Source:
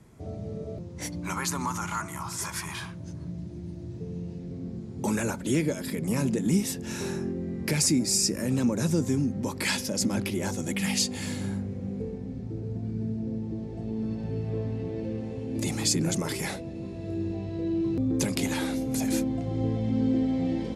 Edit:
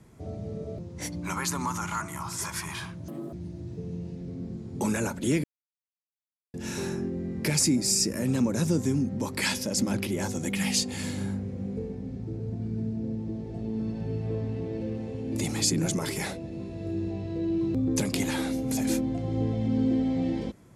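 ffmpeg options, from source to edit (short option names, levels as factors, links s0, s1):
-filter_complex "[0:a]asplit=5[s0][s1][s2][s3][s4];[s0]atrim=end=3.084[s5];[s1]atrim=start=3.08:end=3.56,asetpts=PTS-STARTPTS,asetrate=85113,aresample=44100[s6];[s2]atrim=start=3.556:end=5.67,asetpts=PTS-STARTPTS,afade=t=out:st=2.11:d=0.004:c=hsin[s7];[s3]atrim=start=5.67:end=6.77,asetpts=PTS-STARTPTS,volume=0[s8];[s4]atrim=start=6.77,asetpts=PTS-STARTPTS,afade=t=in:d=0.004:c=hsin[s9];[s5][s6]acrossfade=d=0.004:c1=hsin:c2=hsin[s10];[s7][s8][s9]concat=n=3:v=0:a=1[s11];[s10][s11]acrossfade=d=0.004:c1=hsin:c2=hsin"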